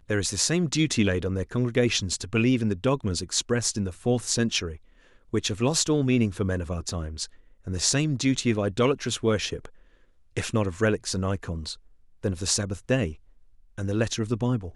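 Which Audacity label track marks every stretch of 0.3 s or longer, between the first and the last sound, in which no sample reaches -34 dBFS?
4.750000	5.340000	silence
7.260000	7.670000	silence
9.660000	10.370000	silence
11.740000	12.230000	silence
13.130000	13.780000	silence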